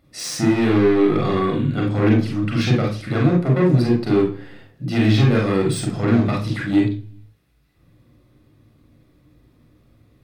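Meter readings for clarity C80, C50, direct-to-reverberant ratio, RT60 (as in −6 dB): 11.5 dB, 5.0 dB, −1.5 dB, 0.40 s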